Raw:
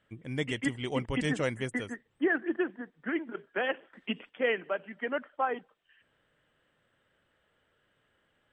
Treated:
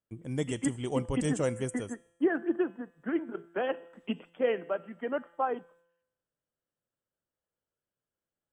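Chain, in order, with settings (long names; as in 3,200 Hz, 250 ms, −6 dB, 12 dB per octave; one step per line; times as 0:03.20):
octave-band graphic EQ 2,000/4,000/8,000 Hz −10/−8/+8 dB
noise gate with hold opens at −58 dBFS
tuned comb filter 170 Hz, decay 0.9 s, harmonics all, mix 50%
level +7.5 dB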